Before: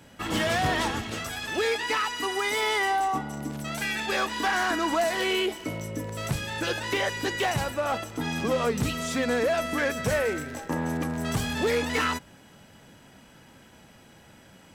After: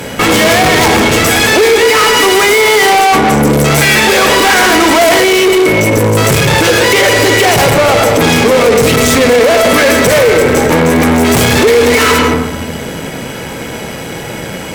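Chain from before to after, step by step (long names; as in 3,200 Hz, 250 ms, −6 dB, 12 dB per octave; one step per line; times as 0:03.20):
high-shelf EQ 12,000 Hz +6 dB
mains-hum notches 50/100/150/200/250/300/350/400/450 Hz
on a send at −8 dB: convolution reverb RT60 0.85 s, pre-delay 76 ms
on the sum: tube saturation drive 38 dB, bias 0.6
low-shelf EQ 64 Hz −5.5 dB
hollow resonant body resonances 450/2,200 Hz, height 9 dB, ringing for 25 ms
boost into a limiter +32.5 dB
level −1 dB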